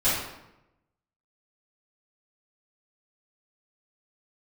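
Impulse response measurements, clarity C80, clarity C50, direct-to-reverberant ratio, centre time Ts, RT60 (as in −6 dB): 4.0 dB, 0.5 dB, −14.5 dB, 64 ms, 0.90 s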